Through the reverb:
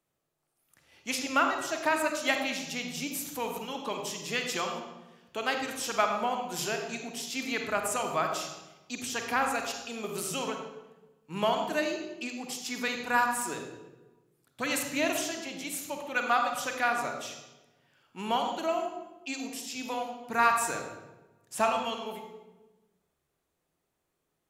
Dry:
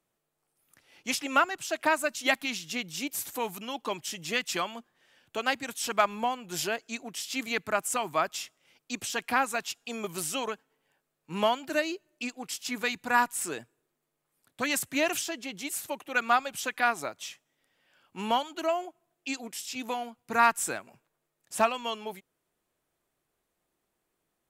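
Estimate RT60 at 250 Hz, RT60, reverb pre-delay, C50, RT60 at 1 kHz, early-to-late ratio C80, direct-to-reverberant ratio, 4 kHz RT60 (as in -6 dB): 1.5 s, 1.1 s, 31 ms, 4.5 dB, 1.0 s, 6.5 dB, 3.0 dB, 0.75 s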